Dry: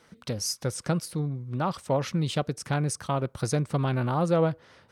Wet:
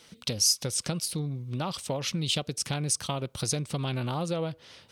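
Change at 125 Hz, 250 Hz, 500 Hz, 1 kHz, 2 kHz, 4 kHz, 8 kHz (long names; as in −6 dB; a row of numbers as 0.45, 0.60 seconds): −4.5, −4.5, −6.5, −6.0, −2.5, +7.5, +7.0 decibels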